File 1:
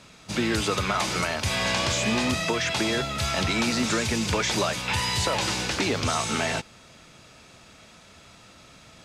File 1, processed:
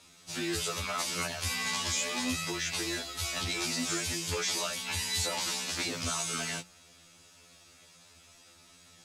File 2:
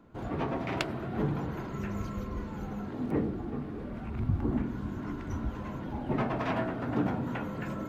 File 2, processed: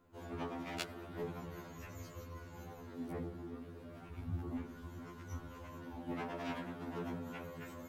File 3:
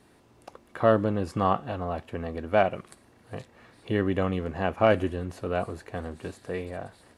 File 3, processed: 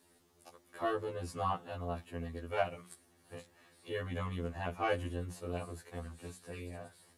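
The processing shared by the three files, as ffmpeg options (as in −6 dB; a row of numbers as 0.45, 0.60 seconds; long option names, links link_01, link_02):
-af "bandreject=frequency=60:width_type=h:width=6,bandreject=frequency=120:width_type=h:width=6,bandreject=frequency=180:width_type=h:width=6,crystalizer=i=2.5:c=0,afftfilt=real='re*2*eq(mod(b,4),0)':imag='im*2*eq(mod(b,4),0)':win_size=2048:overlap=0.75,volume=-8.5dB"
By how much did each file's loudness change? −6.5, −11.5, −11.5 LU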